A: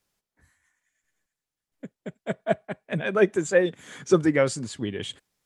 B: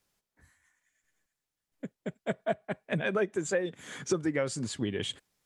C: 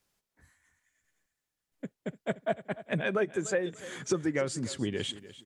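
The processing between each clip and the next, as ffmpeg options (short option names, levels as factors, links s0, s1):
-af "acompressor=threshold=0.0501:ratio=6"
-af "aecho=1:1:295|590|885:0.15|0.0434|0.0126"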